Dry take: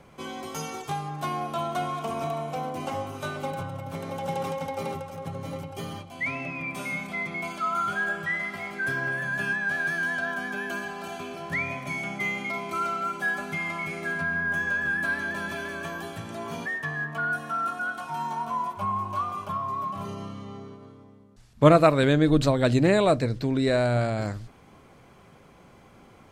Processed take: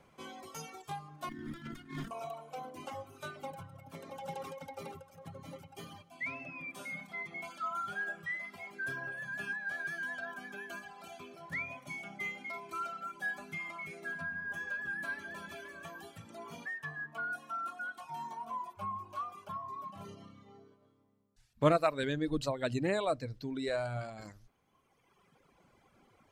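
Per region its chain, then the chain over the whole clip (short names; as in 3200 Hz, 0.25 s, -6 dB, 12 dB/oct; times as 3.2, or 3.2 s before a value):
1.29–2.11 minimum comb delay 0.58 ms + resonant low shelf 370 Hz +8.5 dB, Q 3 + negative-ratio compressor -29 dBFS, ratio -0.5
5.12–8.2 HPF 49 Hz + split-band echo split 1500 Hz, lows 0.213 s, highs 90 ms, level -13 dB
whole clip: reverb removal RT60 1.9 s; low shelf 370 Hz -3.5 dB; gain -8.5 dB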